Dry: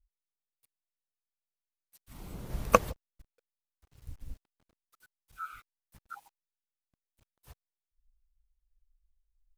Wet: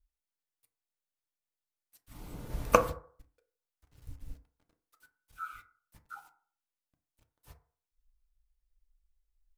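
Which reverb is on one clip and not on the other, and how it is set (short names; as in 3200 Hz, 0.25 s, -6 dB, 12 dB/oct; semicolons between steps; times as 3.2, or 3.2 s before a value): FDN reverb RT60 0.49 s, low-frequency decay 0.75×, high-frequency decay 0.35×, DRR 5.5 dB; gain -1.5 dB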